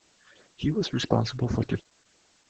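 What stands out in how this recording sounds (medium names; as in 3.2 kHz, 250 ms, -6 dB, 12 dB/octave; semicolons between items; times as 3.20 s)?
phasing stages 8, 2.8 Hz, lowest notch 600–3300 Hz; a quantiser's noise floor 10-bit, dither triangular; Opus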